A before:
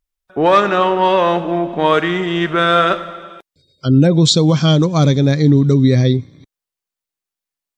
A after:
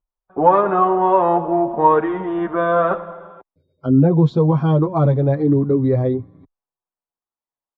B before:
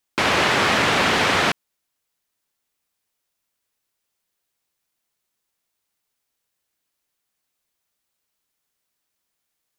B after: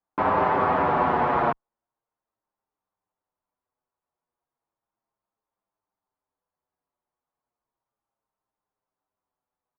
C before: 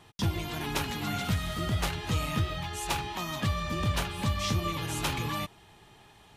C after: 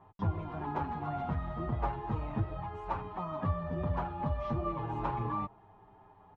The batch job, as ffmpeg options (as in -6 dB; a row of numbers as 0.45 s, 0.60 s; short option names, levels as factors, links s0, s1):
-filter_complex "[0:a]lowpass=f=960:t=q:w=2.1,asplit=2[s0][s1];[s1]adelay=7.3,afreqshift=-0.34[s2];[s0][s2]amix=inputs=2:normalize=1,volume=0.891"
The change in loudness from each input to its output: -3.0 LU, -4.5 LU, -4.5 LU